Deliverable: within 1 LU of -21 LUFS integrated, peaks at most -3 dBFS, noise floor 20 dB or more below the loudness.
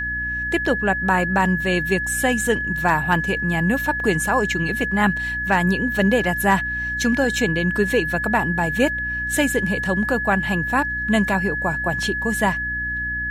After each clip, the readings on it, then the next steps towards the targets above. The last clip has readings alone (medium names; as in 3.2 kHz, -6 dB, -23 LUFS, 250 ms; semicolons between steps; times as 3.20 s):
hum 60 Hz; highest harmonic 300 Hz; hum level -32 dBFS; steady tone 1.7 kHz; tone level -23 dBFS; loudness -20.5 LUFS; peak level -5.0 dBFS; loudness target -21.0 LUFS
-> de-hum 60 Hz, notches 5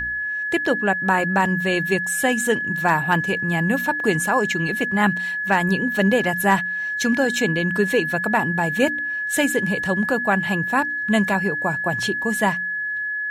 hum not found; steady tone 1.7 kHz; tone level -23 dBFS
-> band-stop 1.7 kHz, Q 30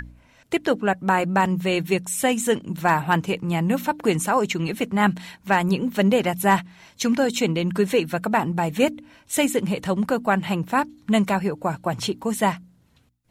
steady tone not found; loudness -22.5 LUFS; peak level -5.5 dBFS; loudness target -21.0 LUFS
-> trim +1.5 dB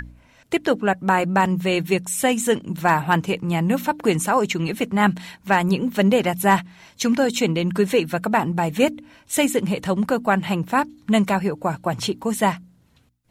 loudness -21.0 LUFS; peak level -4.0 dBFS; noise floor -57 dBFS